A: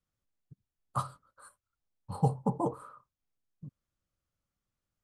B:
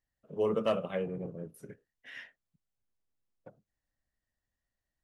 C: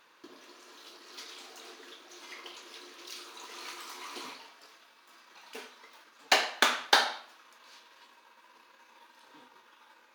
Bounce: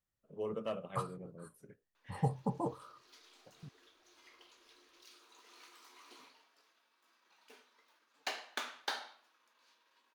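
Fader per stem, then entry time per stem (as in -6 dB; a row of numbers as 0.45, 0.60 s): -5.5, -9.5, -15.5 dB; 0.00, 0.00, 1.95 s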